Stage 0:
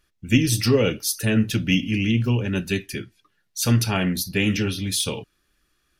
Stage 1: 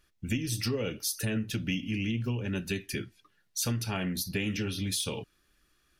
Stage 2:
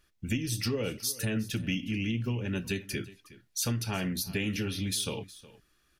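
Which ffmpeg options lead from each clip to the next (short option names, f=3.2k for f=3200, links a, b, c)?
-af "acompressor=threshold=-28dB:ratio=5,volume=-1dB"
-af "aecho=1:1:365:0.112"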